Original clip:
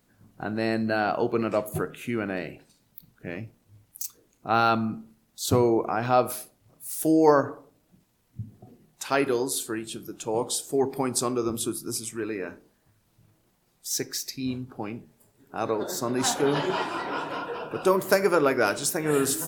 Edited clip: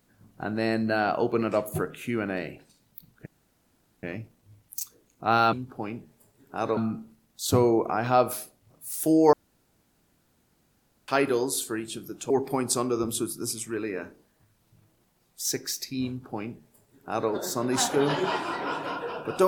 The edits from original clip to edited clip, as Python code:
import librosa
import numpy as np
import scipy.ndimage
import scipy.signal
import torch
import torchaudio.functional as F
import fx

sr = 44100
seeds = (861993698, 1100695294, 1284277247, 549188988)

y = fx.edit(x, sr, fx.insert_room_tone(at_s=3.26, length_s=0.77),
    fx.room_tone_fill(start_s=7.32, length_s=1.75),
    fx.cut(start_s=10.29, length_s=0.47),
    fx.duplicate(start_s=14.53, length_s=1.24, to_s=4.76), tone=tone)